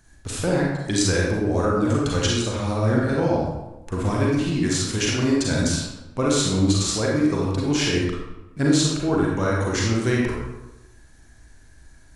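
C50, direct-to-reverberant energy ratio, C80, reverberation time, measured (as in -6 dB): -1.0 dB, -4.0 dB, 2.5 dB, 1.0 s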